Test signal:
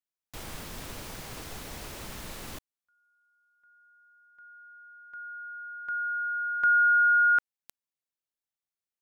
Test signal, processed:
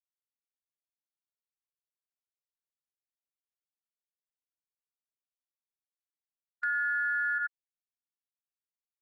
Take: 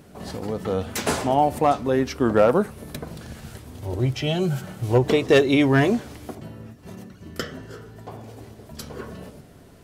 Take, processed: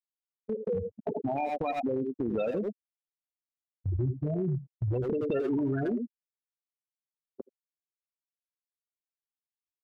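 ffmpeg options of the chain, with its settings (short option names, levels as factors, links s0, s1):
-filter_complex "[0:a]equalizer=f=9600:w=0.59:g=-5,acrusher=samples=14:mix=1:aa=0.000001,afftfilt=real='re*gte(hypot(re,im),0.316)':imag='im*gte(hypot(re,im),0.316)':win_size=1024:overlap=0.75,asplit=2[s0][s1];[s1]adelay=80,highpass=300,lowpass=3400,asoftclip=type=hard:threshold=0.15,volume=0.316[s2];[s0][s2]amix=inputs=2:normalize=0,agate=range=0.2:threshold=0.01:ratio=16:release=247:detection=peak,acompressor=threshold=0.0355:ratio=10:attack=0.37:release=80:knee=1:detection=rms,volume=1.58"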